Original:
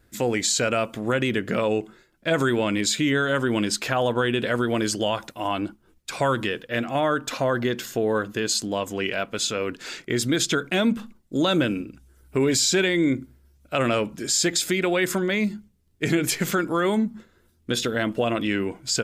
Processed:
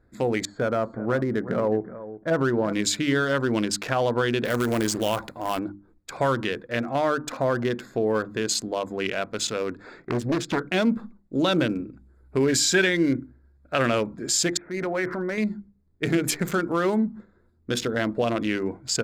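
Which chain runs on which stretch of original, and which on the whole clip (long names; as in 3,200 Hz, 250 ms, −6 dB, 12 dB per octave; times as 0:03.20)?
0:00.45–0:02.73: Savitzky-Golay smoothing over 41 samples + single-tap delay 369 ms −14 dB
0:04.45–0:05.59: transient designer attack −3 dB, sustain +5 dB + log-companded quantiser 4 bits
0:09.79–0:10.67: high-shelf EQ 3,600 Hz −8.5 dB + highs frequency-modulated by the lows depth 0.7 ms
0:12.40–0:13.90: parametric band 1,600 Hz +9.5 dB 0.3 octaves + notch filter 1,500 Hz, Q 30
0:14.57–0:15.38: Butterworth low-pass 2,200 Hz 48 dB per octave + low-shelf EQ 390 Hz −6 dB + transient designer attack −5 dB, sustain +7 dB
whole clip: adaptive Wiener filter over 15 samples; mains-hum notches 50/100/150/200/250/300/350 Hz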